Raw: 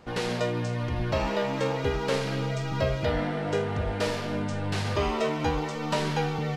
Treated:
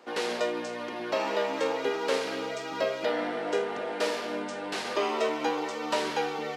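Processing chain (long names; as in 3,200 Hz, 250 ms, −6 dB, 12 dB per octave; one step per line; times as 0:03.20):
high-pass filter 280 Hz 24 dB per octave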